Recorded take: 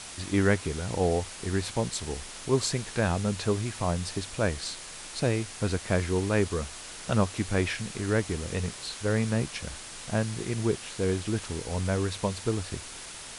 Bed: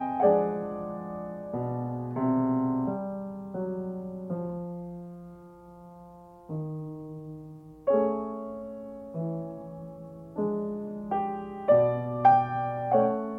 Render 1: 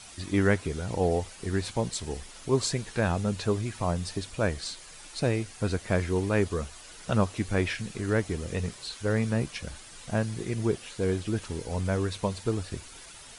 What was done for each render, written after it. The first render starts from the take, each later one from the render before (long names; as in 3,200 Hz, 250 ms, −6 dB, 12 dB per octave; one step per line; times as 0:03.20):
broadband denoise 9 dB, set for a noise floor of −43 dBFS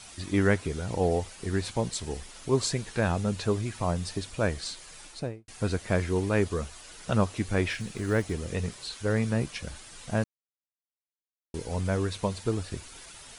0:05.01–0:05.48: fade out and dull
0:07.71–0:08.35: one scale factor per block 7 bits
0:10.24–0:11.54: silence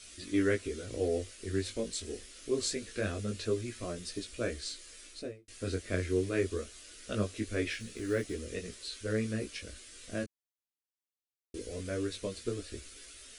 phaser with its sweep stopped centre 360 Hz, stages 4
chorus effect 0.24 Hz, delay 16.5 ms, depth 5.2 ms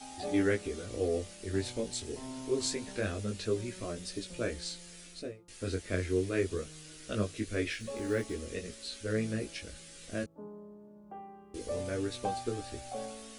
mix in bed −17.5 dB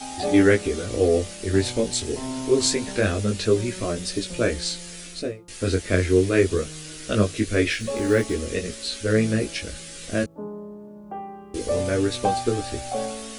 level +12 dB